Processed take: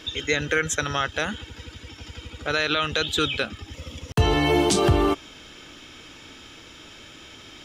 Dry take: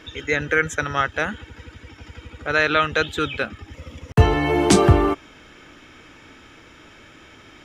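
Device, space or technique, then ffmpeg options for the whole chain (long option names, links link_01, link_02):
over-bright horn tweeter: -af "highshelf=frequency=2600:width_type=q:width=1.5:gain=6.5,alimiter=limit=-10.5dB:level=0:latency=1:release=97"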